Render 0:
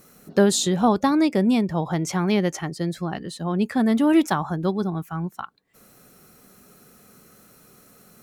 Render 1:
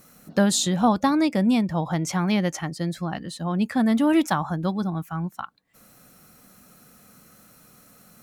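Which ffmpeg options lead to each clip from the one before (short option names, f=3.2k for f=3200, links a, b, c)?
-af "equalizer=f=400:w=5.1:g=-12"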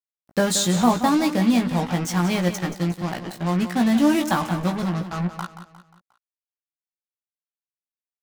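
-filter_complex "[0:a]acrusher=bits=4:mix=0:aa=0.5,asplit=2[a][b];[b]adelay=17,volume=-5dB[c];[a][c]amix=inputs=2:normalize=0,asplit=2[d][e];[e]aecho=0:1:178|356|534|712:0.266|0.117|0.0515|0.0227[f];[d][f]amix=inputs=2:normalize=0"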